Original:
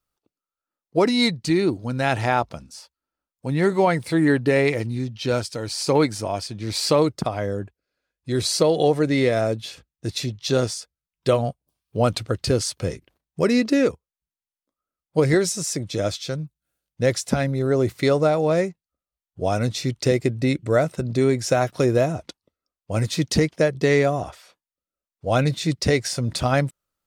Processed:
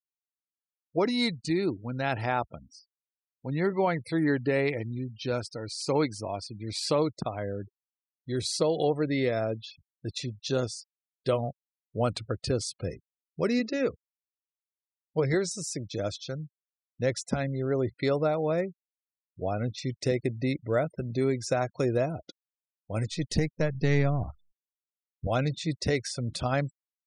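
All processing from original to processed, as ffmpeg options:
ffmpeg -i in.wav -filter_complex "[0:a]asettb=1/sr,asplit=3[link_01][link_02][link_03];[link_01]atrim=end=13.594[link_04];[link_02]atrim=start=13.59:end=15.51,asetpts=PTS-STARTPTS,afade=type=in:duration=0.004:curve=qsin,afade=type=out:start_time=1.916:duration=0.004:curve=qsin,lowpass=frequency=8100:width=0.5412,lowpass=frequency=8100:width=1.3066,bandreject=frequency=290:width=7.6[link_05];[link_03]atrim=start=15.506[link_06];[link_04][link_05]acrossfade=duration=0.004:curve1=hsin:curve2=qsin[link_07];[link_07][link_06]acrossfade=duration=0.004:curve1=qsin:curve2=hsin,asettb=1/sr,asplit=3[link_08][link_09][link_10];[link_08]atrim=end=18.614[link_11];[link_09]atrim=start=18.61:end=19.78,asetpts=PTS-STARTPTS,afade=type=in:duration=0.004:curve=qsin,afade=type=out:start_time=1.166:duration=0.004:curve=qsin,aemphasis=mode=reproduction:type=75kf,bandreject=frequency=960:width=16[link_12];[link_10]atrim=start=19.776[link_13];[link_11][link_12]acrossfade=duration=0.004:curve1=hsin:curve2=qsin[link_14];[link_14][link_13]acrossfade=duration=0.004:curve1=qsin:curve2=hsin,asettb=1/sr,asplit=3[link_15][link_16][link_17];[link_15]atrim=end=23.114[link_18];[link_16]atrim=start=23.11:end=25.27,asetpts=PTS-STARTPTS,afade=type=in:duration=0.004:curve=qsin,afade=type=out:start_time=2.156:duration=0.004:curve=qsin,aeval=exprs='if(lt(val(0),0),0.708*val(0),val(0))':channel_layout=same,asubboost=boost=11.5:cutoff=200[link_19];[link_17]atrim=start=25.266[link_20];[link_18][link_19]acrossfade=duration=0.004:curve1=hsin:curve2=qsin[link_21];[link_21][link_20]acrossfade=duration=0.004:curve1=qsin:curve2=hsin,afftfilt=real='re*gte(hypot(re,im),0.0178)':imag='im*gte(hypot(re,im),0.0178)':win_size=1024:overlap=0.75,highshelf=frequency=11000:gain=-3.5,volume=-7.5dB" out.wav

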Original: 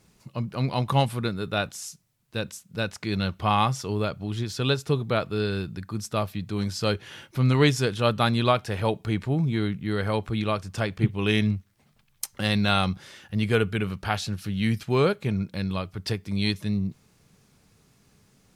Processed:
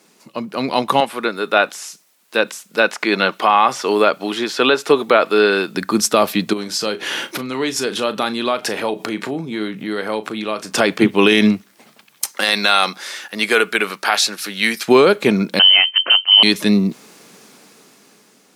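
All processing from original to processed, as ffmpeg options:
ffmpeg -i in.wav -filter_complex "[0:a]asettb=1/sr,asplit=3[link_01][link_02][link_03];[link_01]atrim=end=1.004[link_04];[link_02]atrim=start=1:end=5.75,asetpts=PTS-STARTPTS,afade=type=in:duration=0.004:curve=qsin,afade=type=out:start_time=4.746:duration=0.004:curve=qsin,highpass=frequency=580:poles=1,acrossover=split=2900[link_05][link_06];[link_06]acompressor=threshold=-49dB:ratio=4:attack=1:release=60[link_07];[link_05][link_07]amix=inputs=2:normalize=0[link_08];[link_03]atrim=start=5.746[link_09];[link_04][link_08]acrossfade=duration=0.004:curve1=hsin:curve2=qsin[link_10];[link_10][link_09]acrossfade=duration=0.004:curve1=qsin:curve2=hsin,asettb=1/sr,asplit=3[link_11][link_12][link_13];[link_11]atrim=end=6.534[link_14];[link_12]atrim=start=6.53:end=10.72,asetpts=PTS-STARTPTS,afade=type=in:duration=0.004:curve=qsin,afade=type=out:start_time=4.186:duration=0.004:curve=qsin,acompressor=threshold=-38dB:ratio=5:attack=3.2:release=140:knee=1:detection=peak,asplit=2[link_15][link_16];[link_16]adelay=37,volume=-13dB[link_17];[link_15][link_17]amix=inputs=2:normalize=0,atrim=end_sample=184779[link_18];[link_13]atrim=start=10.716[link_19];[link_14][link_18]acrossfade=duration=0.004:curve1=hsin:curve2=qsin[link_20];[link_20][link_19]acrossfade=duration=0.004:curve1=qsin:curve2=hsin,asettb=1/sr,asplit=3[link_21][link_22][link_23];[link_21]atrim=end=12.314[link_24];[link_22]atrim=start=12.31:end=14.88,asetpts=PTS-STARTPTS,afade=type=in:duration=0.004:curve=qsin,afade=type=out:start_time=2.566:duration=0.004:curve=qsin,highpass=frequency=1100:poles=1,equalizer=frequency=3000:width_type=o:width=0.3:gain=-5.5[link_25];[link_23]atrim=start=14.876[link_26];[link_24][link_25]acrossfade=duration=0.004:curve1=hsin:curve2=qsin[link_27];[link_27][link_26]acrossfade=duration=0.004:curve1=qsin:curve2=hsin,asettb=1/sr,asplit=3[link_28][link_29][link_30];[link_28]atrim=end=15.594[link_31];[link_29]atrim=start=15.59:end=16.43,asetpts=PTS-STARTPTS,afade=type=in:duration=0.004:curve=qsin,afade=type=out:start_time=0.836:duration=0.004:curve=qsin,adynamicsmooth=sensitivity=7.5:basefreq=930,lowpass=frequency=2700:width_type=q:width=0.5098,lowpass=frequency=2700:width_type=q:width=0.6013,lowpass=frequency=2700:width_type=q:width=0.9,lowpass=frequency=2700:width_type=q:width=2.563,afreqshift=-3200[link_32];[link_30]atrim=start=16.426[link_33];[link_31][link_32]acrossfade=duration=0.004:curve1=hsin:curve2=qsin[link_34];[link_34][link_33]acrossfade=duration=0.004:curve1=qsin:curve2=hsin,highpass=frequency=240:width=0.5412,highpass=frequency=240:width=1.3066,dynaudnorm=framelen=390:gausssize=7:maxgain=11.5dB,alimiter=level_in=11dB:limit=-1dB:release=50:level=0:latency=1,volume=-1dB" out.wav

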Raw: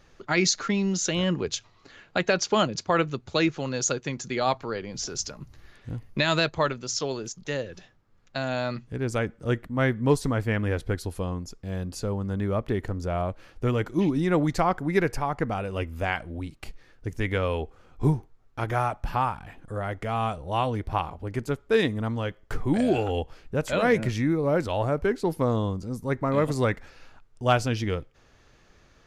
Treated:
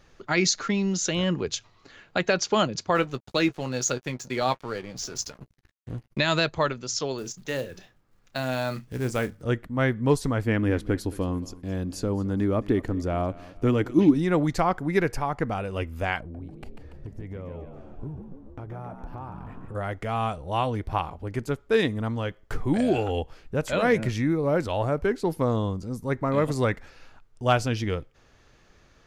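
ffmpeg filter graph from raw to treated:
ffmpeg -i in.wav -filter_complex "[0:a]asettb=1/sr,asplit=3[link_01][link_02][link_03];[link_01]atrim=end=2.954[link_04];[link_02]atrim=start=2.95:end=6.18,asetpts=PTS-STARTPTS,afade=type=in:duration=0.004:curve=qsin,afade=type=out:start_time=3.226:duration=0.004:curve=qsin,aeval=exprs='sgn(val(0))*max(abs(val(0))-0.00596,0)':channel_layout=same,asplit=2[link_05][link_06];[link_06]adelay=16,volume=-11.5dB[link_07];[link_05][link_07]amix=inputs=2:normalize=0,atrim=end_sample=142443,agate=range=-33dB:threshold=-57dB:ratio=3:release=100:detection=peak[link_08];[link_03]atrim=start=6.176[link_09];[link_04][link_08]acrossfade=duration=0.004:curve1=hsin:curve2=qsin[link_10];[link_10][link_09]acrossfade=duration=0.004:curve1=qsin:curve2=hsin,asettb=1/sr,asplit=3[link_11][link_12][link_13];[link_11]atrim=end=7.184[link_14];[link_12]atrim=start=7.18:end=9.42,asetpts=PTS-STARTPTS,afade=type=in:duration=0.004:curve=qsin,afade=type=out:start_time=2.236:duration=0.004:curve=qsin,bandreject=frequency=50:width_type=h:width=6,bandreject=frequency=100:width_type=h:width=6,bandreject=frequency=150:width_type=h:width=6,acrusher=bits=5:mode=log:mix=0:aa=0.000001,asplit=2[link_15][link_16];[link_16]adelay=31,volume=-12dB[link_17];[link_15][link_17]amix=inputs=2:normalize=0,atrim=end_sample=98784[link_18];[link_13]atrim=start=9.416[link_19];[link_14][link_18]acrossfade=duration=0.004:curve1=hsin:curve2=qsin[link_20];[link_20][link_19]acrossfade=duration=0.004:curve1=qsin:curve2=hsin,asettb=1/sr,asplit=3[link_21][link_22][link_23];[link_21]atrim=end=10.444[link_24];[link_22]atrim=start=10.44:end=14.14,asetpts=PTS-STARTPTS,afade=type=in:duration=0.004:curve=qsin,afade=type=out:start_time=3.696:duration=0.004:curve=qsin,equalizer=frequency=290:width_type=o:width=0.56:gain=10,aecho=1:1:220|440|660:0.106|0.0403|0.0153,atrim=end_sample=163170[link_25];[link_23]atrim=start=14.136[link_26];[link_24][link_25]acrossfade=duration=0.004:curve1=hsin:curve2=qsin[link_27];[link_27][link_26]acrossfade=duration=0.004:curve1=qsin:curve2=hsin,asettb=1/sr,asplit=3[link_28][link_29][link_30];[link_28]atrim=end=16.204[link_31];[link_29]atrim=start=16.2:end=19.75,asetpts=PTS-STARTPTS,afade=type=in:duration=0.004:curve=qsin,afade=type=out:start_time=3.546:duration=0.004:curve=qsin,tiltshelf=frequency=1100:gain=9,acompressor=threshold=-36dB:ratio=5:attack=3.2:release=140:knee=1:detection=peak,asplit=8[link_32][link_33][link_34][link_35][link_36][link_37][link_38][link_39];[link_33]adelay=143,afreqshift=65,volume=-8dB[link_40];[link_34]adelay=286,afreqshift=130,volume=-12.7dB[link_41];[link_35]adelay=429,afreqshift=195,volume=-17.5dB[link_42];[link_36]adelay=572,afreqshift=260,volume=-22.2dB[link_43];[link_37]adelay=715,afreqshift=325,volume=-26.9dB[link_44];[link_38]adelay=858,afreqshift=390,volume=-31.7dB[link_45];[link_39]adelay=1001,afreqshift=455,volume=-36.4dB[link_46];[link_32][link_40][link_41][link_42][link_43][link_44][link_45][link_46]amix=inputs=8:normalize=0,atrim=end_sample=156555[link_47];[link_30]atrim=start=19.746[link_48];[link_31][link_47]acrossfade=duration=0.004:curve1=hsin:curve2=qsin[link_49];[link_49][link_48]acrossfade=duration=0.004:curve1=qsin:curve2=hsin" out.wav

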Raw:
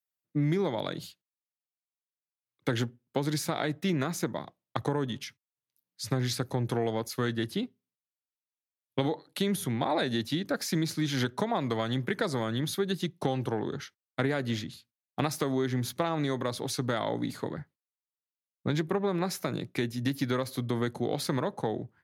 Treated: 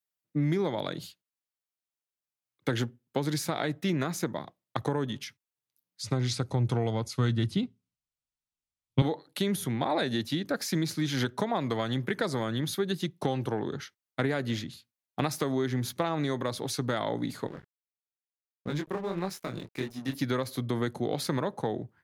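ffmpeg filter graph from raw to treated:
ffmpeg -i in.wav -filter_complex "[0:a]asettb=1/sr,asplit=3[link_01][link_02][link_03];[link_01]atrim=end=6.024[link_04];[link_02]atrim=start=6.02:end=9.02,asetpts=PTS-STARTPTS,afade=type=in:duration=0.004:curve=qsin,afade=type=out:start_time=2.996:duration=0.004:curve=qsin,lowpass=frequency=9600:width=0.5412,lowpass=frequency=9600:width=1.3066,bandreject=frequency=1700:width=6.5,asubboost=boost=8.5:cutoff=170[link_05];[link_03]atrim=start=9.016[link_06];[link_04][link_05]acrossfade=duration=0.004:curve1=hsin:curve2=qsin[link_07];[link_07][link_06]acrossfade=duration=0.004:curve1=qsin:curve2=hsin,asettb=1/sr,asplit=3[link_08][link_09][link_10];[link_08]atrim=end=17.474[link_11];[link_09]atrim=start=17.47:end=20.15,asetpts=PTS-STARTPTS,afade=type=in:duration=0.004:curve=qsin,afade=type=out:start_time=2.676:duration=0.004:curve=qsin,flanger=delay=20:depth=6.9:speed=1.6,aeval=exprs='sgn(val(0))*max(abs(val(0))-0.00422,0)':channel_layout=same[link_12];[link_10]atrim=start=20.146[link_13];[link_11][link_12]acrossfade=duration=0.004:curve1=hsin:curve2=qsin[link_14];[link_14][link_13]acrossfade=duration=0.004:curve1=qsin:curve2=hsin" out.wav

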